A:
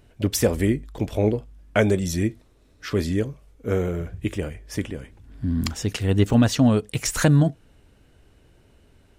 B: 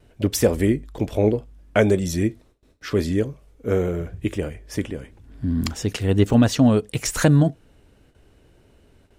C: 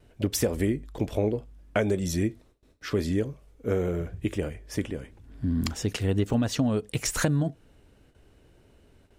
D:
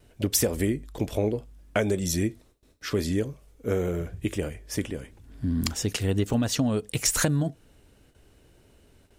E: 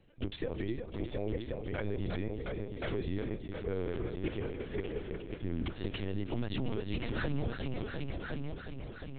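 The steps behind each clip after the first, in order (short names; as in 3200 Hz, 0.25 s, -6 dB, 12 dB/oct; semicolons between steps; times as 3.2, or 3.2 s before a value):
gate with hold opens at -47 dBFS; bell 420 Hz +3 dB 1.8 oct
compressor 6:1, threshold -18 dBFS, peak gain reduction 7.5 dB; gain -3 dB
high shelf 4300 Hz +8 dB
multi-head echo 0.356 s, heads all three, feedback 56%, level -10 dB; LPC vocoder at 8 kHz pitch kept; limiter -16.5 dBFS, peak gain reduction 10 dB; gain -7.5 dB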